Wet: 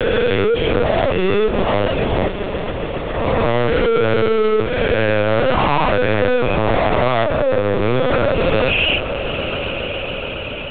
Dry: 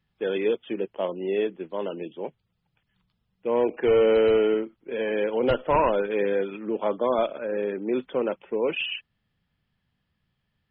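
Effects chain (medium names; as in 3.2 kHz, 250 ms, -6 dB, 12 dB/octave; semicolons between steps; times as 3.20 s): reverse spectral sustain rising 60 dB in 1.21 s; high-pass 460 Hz 12 dB/octave; spectral gate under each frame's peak -25 dB strong; in parallel at +1.5 dB: peak limiter -19.5 dBFS, peak gain reduction 9.5 dB; on the sum: fuzz box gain 28 dB, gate -38 dBFS; 7.24–7.83 s: low-pass 1 kHz 6 dB/octave; echo with a slow build-up 139 ms, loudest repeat 5, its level -17 dB; LPC vocoder at 8 kHz pitch kept; three bands compressed up and down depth 40%; trim -1 dB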